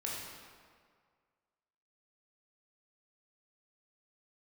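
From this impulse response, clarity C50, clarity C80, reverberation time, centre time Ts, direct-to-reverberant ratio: -0.5 dB, 1.5 dB, 1.9 s, 99 ms, -4.5 dB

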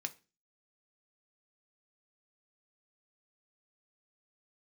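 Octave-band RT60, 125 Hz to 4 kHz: 0.40 s, 0.45 s, 0.35 s, 0.30 s, 0.30 s, 0.30 s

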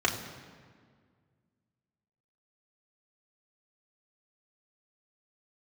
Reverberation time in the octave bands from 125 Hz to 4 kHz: 2.5 s, 2.4 s, 1.9 s, 1.7 s, 1.6 s, 1.2 s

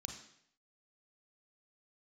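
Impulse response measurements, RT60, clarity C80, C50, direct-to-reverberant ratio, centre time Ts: 0.70 s, 9.0 dB, 6.0 dB, 3.0 dB, 26 ms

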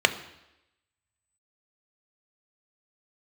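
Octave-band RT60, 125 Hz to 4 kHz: 0.80 s, 0.90 s, 0.90 s, 0.90 s, 0.90 s, 0.90 s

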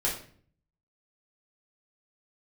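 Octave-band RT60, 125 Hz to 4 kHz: 0.85 s, 0.70 s, 0.55 s, 0.45 s, 0.45 s, 0.40 s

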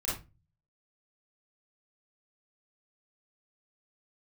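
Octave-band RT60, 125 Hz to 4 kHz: 0.70 s, 0.45 s, 0.30 s, 0.25 s, 0.25 s, 0.20 s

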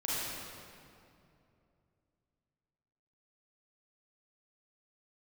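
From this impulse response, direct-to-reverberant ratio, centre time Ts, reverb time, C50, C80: -8.5 dB, 172 ms, 2.6 s, -5.5 dB, -2.5 dB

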